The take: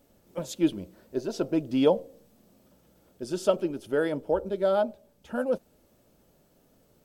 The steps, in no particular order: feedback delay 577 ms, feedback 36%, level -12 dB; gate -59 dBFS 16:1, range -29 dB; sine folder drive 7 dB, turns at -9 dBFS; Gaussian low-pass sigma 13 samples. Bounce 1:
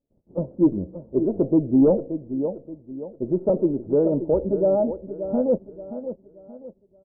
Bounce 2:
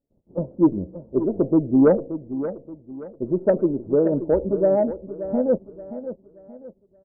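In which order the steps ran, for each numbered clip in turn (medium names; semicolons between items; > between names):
gate > feedback delay > sine folder > Gaussian low-pass; gate > Gaussian low-pass > sine folder > feedback delay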